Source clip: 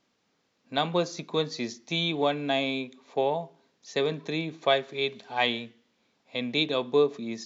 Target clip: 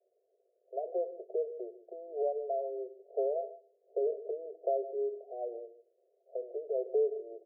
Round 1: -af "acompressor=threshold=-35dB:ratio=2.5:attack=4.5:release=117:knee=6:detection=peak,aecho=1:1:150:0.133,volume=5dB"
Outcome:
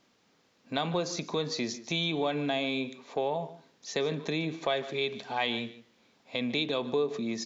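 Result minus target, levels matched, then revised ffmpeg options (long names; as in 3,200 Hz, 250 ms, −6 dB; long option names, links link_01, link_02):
500 Hz band −4.0 dB
-af "acompressor=threshold=-35dB:ratio=2.5:attack=4.5:release=117:knee=6:detection=peak,asuperpass=centerf=510:order=20:qfactor=1.5,aecho=1:1:150:0.133,volume=5dB"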